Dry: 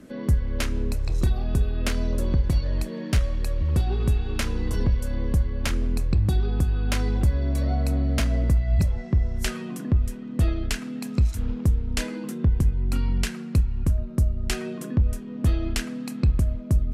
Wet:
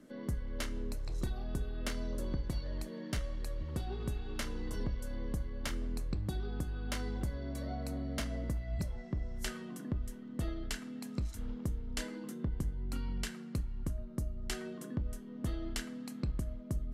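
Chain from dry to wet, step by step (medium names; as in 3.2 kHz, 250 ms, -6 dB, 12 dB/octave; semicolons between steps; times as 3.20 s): peaking EQ 77 Hz -8.5 dB 1.3 oct; band-stop 2.5 kHz, Q 10; feedback comb 300 Hz, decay 0.31 s, harmonics all, mix 50%; trim -4.5 dB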